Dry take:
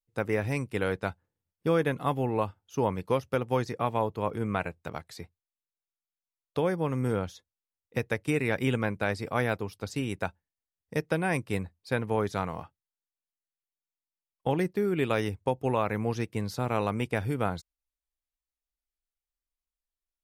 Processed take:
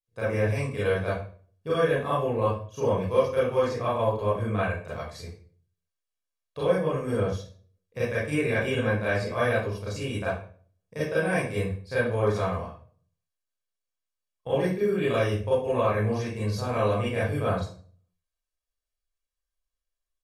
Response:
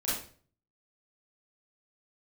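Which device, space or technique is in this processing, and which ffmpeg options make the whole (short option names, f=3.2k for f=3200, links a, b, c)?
microphone above a desk: -filter_complex "[0:a]lowpass=11k,aecho=1:1:1.8:0.52[a];[1:a]atrim=start_sample=2205[b];[a][b]afir=irnorm=-1:irlink=0,volume=-5dB"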